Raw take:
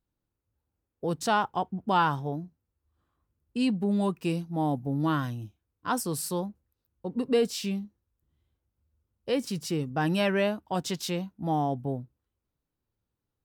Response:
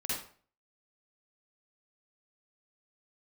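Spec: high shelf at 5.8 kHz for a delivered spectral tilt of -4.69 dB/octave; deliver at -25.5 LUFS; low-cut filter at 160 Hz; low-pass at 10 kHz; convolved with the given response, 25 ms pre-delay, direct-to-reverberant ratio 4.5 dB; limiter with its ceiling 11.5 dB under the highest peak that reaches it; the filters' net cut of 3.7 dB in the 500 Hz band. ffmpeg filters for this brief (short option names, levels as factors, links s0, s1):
-filter_complex "[0:a]highpass=160,lowpass=10000,equalizer=f=500:t=o:g=-4.5,highshelf=f=5800:g=5,alimiter=level_in=1.06:limit=0.0631:level=0:latency=1,volume=0.944,asplit=2[s0][s1];[1:a]atrim=start_sample=2205,adelay=25[s2];[s1][s2]afir=irnorm=-1:irlink=0,volume=0.376[s3];[s0][s3]amix=inputs=2:normalize=0,volume=2.51"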